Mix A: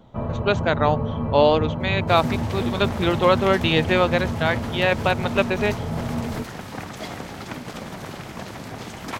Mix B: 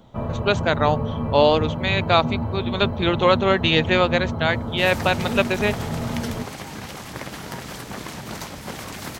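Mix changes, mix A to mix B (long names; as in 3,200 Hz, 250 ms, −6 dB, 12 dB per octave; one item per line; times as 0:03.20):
second sound: entry +2.70 s
master: add high-shelf EQ 3,600 Hz +7 dB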